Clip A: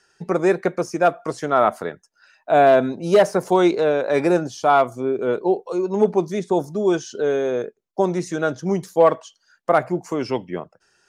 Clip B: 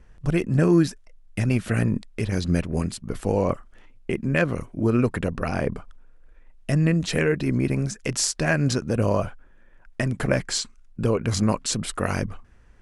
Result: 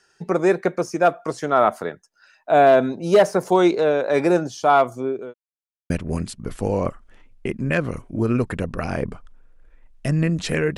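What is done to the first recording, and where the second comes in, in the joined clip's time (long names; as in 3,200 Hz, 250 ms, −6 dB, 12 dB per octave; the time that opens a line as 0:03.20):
clip A
0:04.88–0:05.34: fade out equal-power
0:05.34–0:05.90: silence
0:05.90: continue with clip B from 0:02.54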